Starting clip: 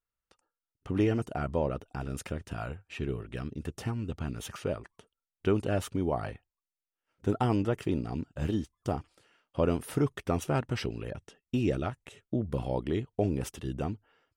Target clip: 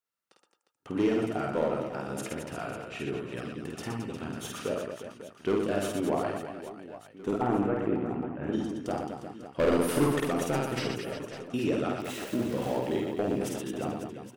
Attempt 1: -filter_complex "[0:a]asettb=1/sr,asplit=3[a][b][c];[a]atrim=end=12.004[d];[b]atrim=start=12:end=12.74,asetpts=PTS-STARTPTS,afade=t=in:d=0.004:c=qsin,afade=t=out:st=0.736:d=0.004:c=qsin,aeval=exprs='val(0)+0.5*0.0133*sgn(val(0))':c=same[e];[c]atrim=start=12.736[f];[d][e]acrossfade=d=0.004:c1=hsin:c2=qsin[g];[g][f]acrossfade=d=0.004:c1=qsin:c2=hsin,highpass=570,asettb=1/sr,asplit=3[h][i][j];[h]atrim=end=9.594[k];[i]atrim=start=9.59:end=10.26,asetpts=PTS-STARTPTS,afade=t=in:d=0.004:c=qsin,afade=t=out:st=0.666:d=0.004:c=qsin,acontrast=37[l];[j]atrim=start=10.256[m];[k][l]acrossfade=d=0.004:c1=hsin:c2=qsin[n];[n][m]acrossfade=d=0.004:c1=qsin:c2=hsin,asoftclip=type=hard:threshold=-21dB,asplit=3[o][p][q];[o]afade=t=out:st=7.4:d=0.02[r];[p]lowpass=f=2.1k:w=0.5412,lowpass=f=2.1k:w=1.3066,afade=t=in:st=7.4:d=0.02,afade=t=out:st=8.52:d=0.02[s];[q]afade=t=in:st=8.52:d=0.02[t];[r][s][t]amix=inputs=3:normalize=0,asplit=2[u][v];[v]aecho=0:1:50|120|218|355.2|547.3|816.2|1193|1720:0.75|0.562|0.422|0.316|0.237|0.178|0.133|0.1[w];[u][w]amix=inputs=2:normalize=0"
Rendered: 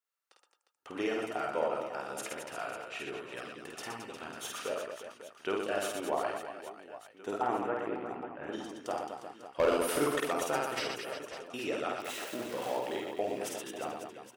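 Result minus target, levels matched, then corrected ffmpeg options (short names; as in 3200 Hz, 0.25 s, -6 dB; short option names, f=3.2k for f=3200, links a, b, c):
250 Hz band -6.0 dB
-filter_complex "[0:a]asettb=1/sr,asplit=3[a][b][c];[a]atrim=end=12.004[d];[b]atrim=start=12:end=12.74,asetpts=PTS-STARTPTS,afade=t=in:d=0.004:c=qsin,afade=t=out:st=0.736:d=0.004:c=qsin,aeval=exprs='val(0)+0.5*0.0133*sgn(val(0))':c=same[e];[c]atrim=start=12.736[f];[d][e]acrossfade=d=0.004:c1=hsin:c2=qsin[g];[g][f]acrossfade=d=0.004:c1=qsin:c2=hsin,highpass=200,asettb=1/sr,asplit=3[h][i][j];[h]atrim=end=9.594[k];[i]atrim=start=9.59:end=10.26,asetpts=PTS-STARTPTS,afade=t=in:d=0.004:c=qsin,afade=t=out:st=0.666:d=0.004:c=qsin,acontrast=37[l];[j]atrim=start=10.256[m];[k][l]acrossfade=d=0.004:c1=hsin:c2=qsin[n];[n][m]acrossfade=d=0.004:c1=qsin:c2=hsin,asoftclip=type=hard:threshold=-21dB,asplit=3[o][p][q];[o]afade=t=out:st=7.4:d=0.02[r];[p]lowpass=f=2.1k:w=0.5412,lowpass=f=2.1k:w=1.3066,afade=t=in:st=7.4:d=0.02,afade=t=out:st=8.52:d=0.02[s];[q]afade=t=in:st=8.52:d=0.02[t];[r][s][t]amix=inputs=3:normalize=0,asplit=2[u][v];[v]aecho=0:1:50|120|218|355.2|547.3|816.2|1193|1720:0.75|0.562|0.422|0.316|0.237|0.178|0.133|0.1[w];[u][w]amix=inputs=2:normalize=0"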